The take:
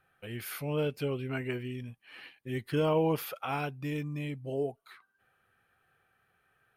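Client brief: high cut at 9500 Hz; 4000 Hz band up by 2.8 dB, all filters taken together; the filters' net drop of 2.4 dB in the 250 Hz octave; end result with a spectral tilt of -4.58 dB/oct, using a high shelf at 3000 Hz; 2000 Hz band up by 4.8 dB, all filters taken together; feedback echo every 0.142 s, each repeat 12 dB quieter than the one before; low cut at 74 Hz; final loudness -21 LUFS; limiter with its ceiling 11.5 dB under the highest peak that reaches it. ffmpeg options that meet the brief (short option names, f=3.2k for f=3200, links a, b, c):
-af "highpass=74,lowpass=9.5k,equalizer=f=250:t=o:g=-3.5,equalizer=f=2k:t=o:g=7,highshelf=f=3k:g=-4,equalizer=f=4k:t=o:g=3.5,alimiter=level_in=4.5dB:limit=-24dB:level=0:latency=1,volume=-4.5dB,aecho=1:1:142|284|426:0.251|0.0628|0.0157,volume=17.5dB"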